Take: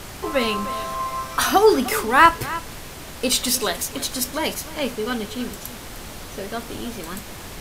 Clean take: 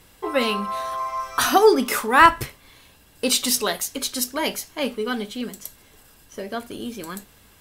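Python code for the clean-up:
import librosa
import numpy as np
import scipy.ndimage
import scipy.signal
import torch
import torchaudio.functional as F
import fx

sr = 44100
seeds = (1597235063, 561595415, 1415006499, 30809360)

y = fx.noise_reduce(x, sr, print_start_s=2.73, print_end_s=3.23, reduce_db=16.0)
y = fx.fix_echo_inverse(y, sr, delay_ms=304, level_db=-16.0)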